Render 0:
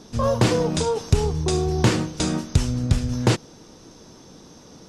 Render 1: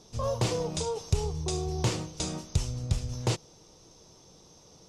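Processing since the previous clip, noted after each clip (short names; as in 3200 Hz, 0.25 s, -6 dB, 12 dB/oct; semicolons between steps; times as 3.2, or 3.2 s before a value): fifteen-band EQ 250 Hz -11 dB, 1600 Hz -8 dB, 6300 Hz +3 dB; gain -7.5 dB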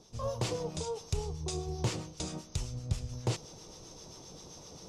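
reverse; upward compressor, threshold -33 dBFS; reverse; harmonic tremolo 7.6 Hz, depth 50%, crossover 950 Hz; gain -3 dB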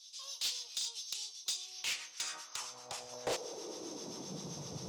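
high-pass sweep 3700 Hz -> 110 Hz, 1.49–4.84; soft clip -33.5 dBFS, distortion -9 dB; gain +4 dB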